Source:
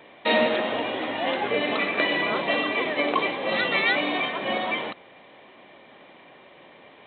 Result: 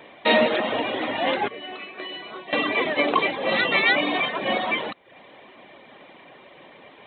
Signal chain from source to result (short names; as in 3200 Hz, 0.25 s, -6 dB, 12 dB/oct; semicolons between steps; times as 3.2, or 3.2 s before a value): reverb removal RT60 0.51 s; 1.48–2.53 resonator 370 Hz, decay 0.31 s, harmonics all, mix 90%; gain +3.5 dB